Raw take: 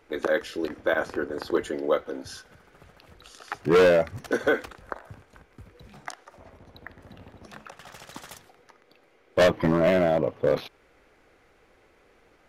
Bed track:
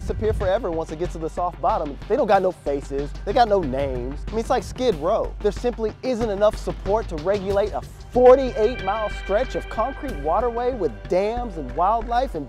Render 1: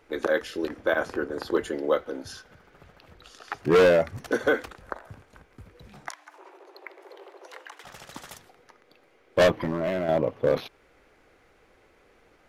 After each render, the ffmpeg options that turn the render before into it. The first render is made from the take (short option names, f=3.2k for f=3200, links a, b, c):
-filter_complex "[0:a]asettb=1/sr,asplit=3[a][b][c];[a]atrim=end=2.324[d];[b]atrim=start=2.32:end=3.58,asetpts=PTS-STARTPTS,afade=t=in:d=0.004:c=qsin,afade=t=out:st=1.256:d=0.004:c=qsin,equalizer=f=9.8k:w=1:g=-6.5[e];[c]atrim=start=3.576[f];[d][e]acrossfade=d=0.004:c1=hsin:c2=qsin[g];[g][f]acrossfade=d=0.004:c1=qsin:c2=hsin,asettb=1/sr,asplit=3[h][i][j];[h]atrim=end=6.094[k];[i]atrim=start=6.09:end=7.84,asetpts=PTS-STARTPTS,afade=t=in:d=0.004:c=qsin,afade=t=out:st=1.746:d=0.004:c=qsin,afreqshift=300[l];[j]atrim=start=7.836[m];[k][l]acrossfade=d=0.004:c1=hsin:c2=qsin[n];[n][m]acrossfade=d=0.004:c1=qsin:c2=hsin,asettb=1/sr,asplit=3[o][p][q];[o]atrim=end=9.564[r];[p]atrim=start=9.56:end=10.09,asetpts=PTS-STARTPTS,afade=t=in:d=0.004:c=qsin,afade=t=out:st=0.526:d=0.004:c=qsin,acompressor=threshold=-27dB:ratio=2.5:attack=3.2:release=140:knee=1:detection=peak[s];[q]atrim=start=10.086[t];[r][s]acrossfade=d=0.004:c1=hsin:c2=qsin[u];[u][t]acrossfade=d=0.004:c1=qsin:c2=hsin"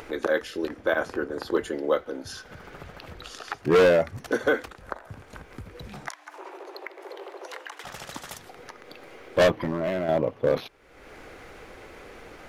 -af "acompressor=mode=upward:threshold=-31dB:ratio=2.5"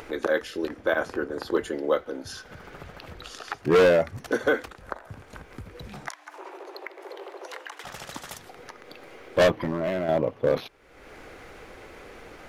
-af anull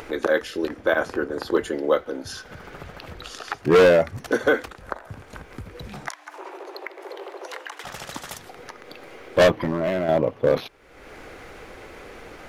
-af "volume=3.5dB"